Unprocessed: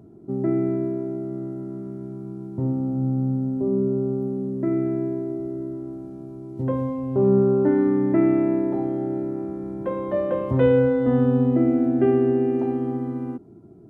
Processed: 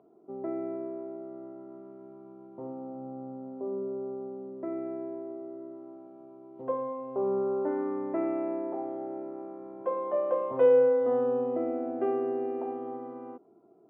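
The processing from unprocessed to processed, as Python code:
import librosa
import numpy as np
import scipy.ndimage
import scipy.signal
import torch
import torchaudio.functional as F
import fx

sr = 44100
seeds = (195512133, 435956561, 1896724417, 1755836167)

y = fx.cabinet(x, sr, low_hz=390.0, low_slope=12, high_hz=3000.0, hz=(490.0, 720.0, 1100.0, 1800.0), db=(8, 8, 9, -5))
y = y * librosa.db_to_amplitude(-9.0)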